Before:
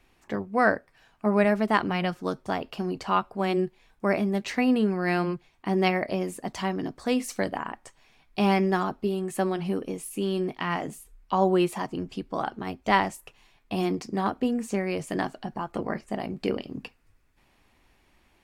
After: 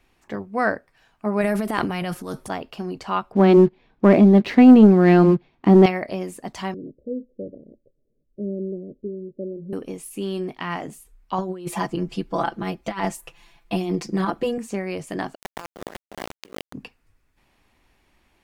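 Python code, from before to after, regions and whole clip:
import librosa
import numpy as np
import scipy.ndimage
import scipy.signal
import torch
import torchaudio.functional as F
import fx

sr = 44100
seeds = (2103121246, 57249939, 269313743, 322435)

y = fx.chain(x, sr, fx.peak_eq(hz=11000.0, db=15.0, octaves=0.69),
    fx.transient(attack_db=-9, sustain_db=9), at=(1.41, 2.5))
y = fx.chain(y, sr, fx.lowpass(hz=4600.0, slope=24),
    fx.peak_eq(hz=250.0, db=12.0, octaves=2.8),
    fx.leveller(passes=1), at=(3.32, 5.86))
y = fx.chain(y, sr, fx.steep_lowpass(hz=570.0, slope=96),
    fx.low_shelf(hz=360.0, db=-7.0), at=(6.74, 9.73))
y = fx.chain(y, sr, fx.comb(ms=5.9, depth=0.99),
    fx.over_compress(threshold_db=-23.0, ratio=-0.5), at=(11.38, 14.58))
y = fx.chain(y, sr, fx.highpass(hz=220.0, slope=24),
    fx.sample_gate(floor_db=-27.5),
    fx.over_compress(threshold_db=-36.0, ratio=-0.5), at=(15.35, 16.73))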